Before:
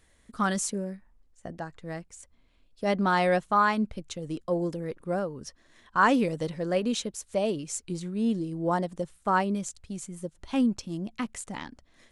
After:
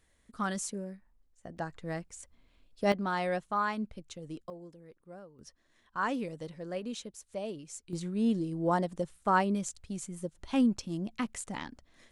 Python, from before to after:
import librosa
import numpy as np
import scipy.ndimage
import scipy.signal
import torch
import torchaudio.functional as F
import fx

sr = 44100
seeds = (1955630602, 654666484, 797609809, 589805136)

y = fx.gain(x, sr, db=fx.steps((0.0, -6.5), (1.57, 0.0), (2.92, -8.0), (4.5, -19.5), (5.39, -10.5), (7.93, -1.5)))